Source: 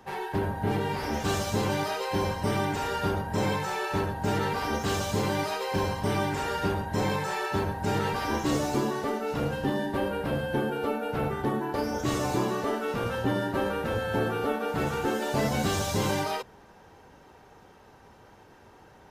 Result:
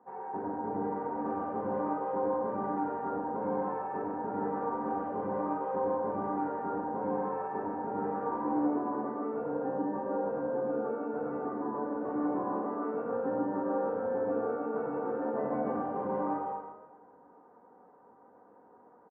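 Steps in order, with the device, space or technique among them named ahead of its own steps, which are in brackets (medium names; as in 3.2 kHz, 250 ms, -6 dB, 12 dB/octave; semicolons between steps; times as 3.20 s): supermarket ceiling speaker (band-pass 270–5100 Hz; reverberation RT60 1.1 s, pre-delay 88 ms, DRR -2 dB); inverse Chebyshev low-pass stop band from 4.1 kHz, stop band 60 dB; comb 4.1 ms, depth 42%; trim -8 dB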